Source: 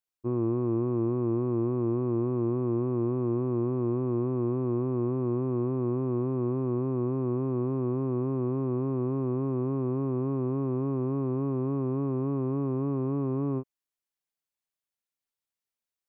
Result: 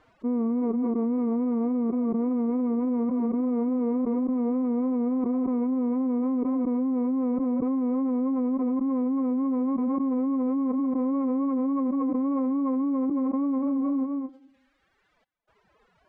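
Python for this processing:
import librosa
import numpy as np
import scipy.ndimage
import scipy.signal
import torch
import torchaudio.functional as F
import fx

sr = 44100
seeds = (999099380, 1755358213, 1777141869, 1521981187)

p1 = fx.rev_freeverb(x, sr, rt60_s=0.92, hf_ratio=0.4, predelay_ms=35, drr_db=14.0)
p2 = fx.dereverb_blind(p1, sr, rt60_s=1.5)
p3 = fx.step_gate(p2, sr, bpm=63, pattern='xxx.xxxx.xxxx.', floor_db=-60.0, edge_ms=4.5)
p4 = scipy.signal.sosfilt(scipy.signal.butter(2, 1300.0, 'lowpass', fs=sr, output='sos'), p3)
p5 = p4 + fx.echo_feedback(p4, sr, ms=226, feedback_pct=39, wet_db=-22.5, dry=0)
p6 = fx.pitch_keep_formants(p5, sr, semitones=12.0)
p7 = fx.env_flatten(p6, sr, amount_pct=100)
y = p7 * librosa.db_to_amplitude(2.5)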